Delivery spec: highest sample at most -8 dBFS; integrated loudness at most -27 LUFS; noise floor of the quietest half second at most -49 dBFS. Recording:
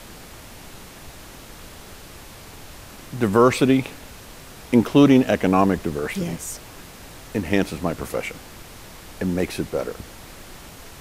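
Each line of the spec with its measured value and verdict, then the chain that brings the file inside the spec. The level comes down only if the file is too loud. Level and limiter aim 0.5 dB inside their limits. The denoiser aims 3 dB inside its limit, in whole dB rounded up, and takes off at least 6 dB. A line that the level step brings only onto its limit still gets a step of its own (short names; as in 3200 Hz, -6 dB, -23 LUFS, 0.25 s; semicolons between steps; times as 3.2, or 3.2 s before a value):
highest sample -3.0 dBFS: fail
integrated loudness -21.0 LUFS: fail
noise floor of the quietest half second -41 dBFS: fail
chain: denoiser 6 dB, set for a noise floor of -41 dBFS; gain -6.5 dB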